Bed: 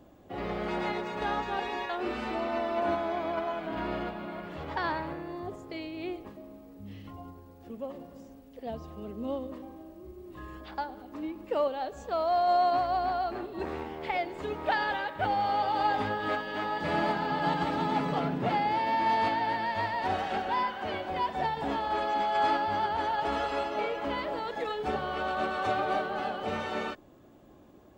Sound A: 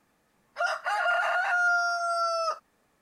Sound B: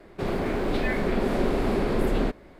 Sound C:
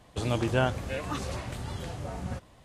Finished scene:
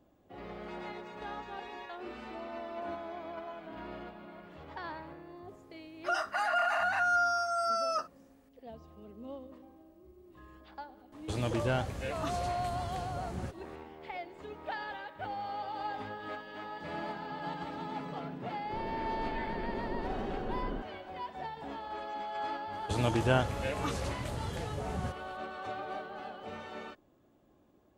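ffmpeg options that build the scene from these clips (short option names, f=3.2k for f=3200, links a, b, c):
-filter_complex "[3:a]asplit=2[a][b];[0:a]volume=-10.5dB[c];[a]asoftclip=type=tanh:threshold=-18.5dB[d];[2:a]afwtdn=0.02[e];[1:a]atrim=end=3.01,asetpts=PTS-STARTPTS,volume=-3.5dB,afade=t=in:d=0.004:c=hsin,afade=t=out:st=3.006:d=0.004:c=hsin,adelay=5480[f];[d]atrim=end=2.64,asetpts=PTS-STARTPTS,volume=-3.5dB,afade=t=in:d=0.004:c=hsin,afade=t=out:st=2.636:d=0.004:c=hsin,adelay=11120[g];[e]atrim=end=2.59,asetpts=PTS-STARTPTS,volume=-13dB,afade=t=in:d=0.004:c=hsin,afade=t=out:st=2.586:d=0.004:c=hsin,adelay=18510[h];[b]atrim=end=2.64,asetpts=PTS-STARTPTS,volume=-1.5dB,afade=t=in:d=0.004:c=hsin,afade=t=out:st=2.636:d=0.004:c=hsin,adelay=22730[i];[c][f][g][h][i]amix=inputs=5:normalize=0"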